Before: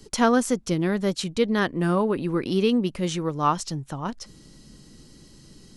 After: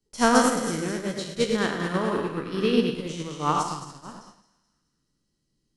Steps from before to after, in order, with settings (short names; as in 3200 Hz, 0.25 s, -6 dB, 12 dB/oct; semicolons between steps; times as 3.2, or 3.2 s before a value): spectral trails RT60 1.18 s; split-band echo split 1500 Hz, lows 0.108 s, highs 0.215 s, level -3.5 dB; upward expander 2.5:1, over -35 dBFS